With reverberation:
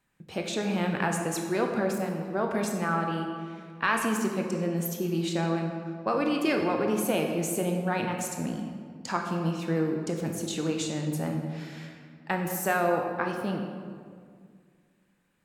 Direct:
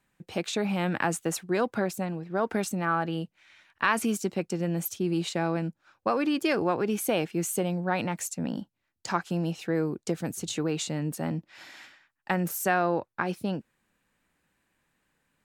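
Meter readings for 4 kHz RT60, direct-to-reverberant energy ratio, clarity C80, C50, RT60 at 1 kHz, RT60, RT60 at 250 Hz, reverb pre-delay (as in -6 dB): 1.2 s, 2.0 dB, 5.5 dB, 4.0 dB, 1.8 s, 2.0 s, 2.4 s, 18 ms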